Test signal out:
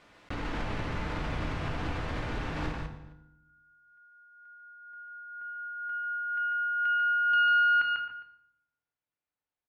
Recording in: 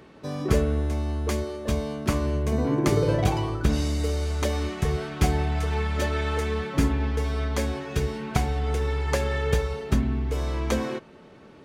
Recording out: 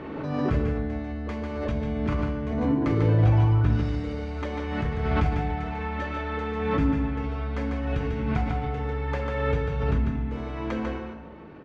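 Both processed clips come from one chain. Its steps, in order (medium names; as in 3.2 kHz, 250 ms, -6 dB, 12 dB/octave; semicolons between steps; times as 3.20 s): self-modulated delay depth 0.081 ms; low-pass 2.2 kHz 12 dB/octave; in parallel at +1 dB: compression, threshold -35 dBFS; on the sum: echo from a far wall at 45 m, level -19 dB; dynamic bell 500 Hz, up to -5 dB, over -36 dBFS, Q 0.77; on a send: delay 146 ms -4 dB; on the sum: FDN reverb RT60 0.78 s, low-frequency decay 1.55×, high-frequency decay 0.75×, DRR 4 dB; swell ahead of each attack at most 32 dB/s; trim -6 dB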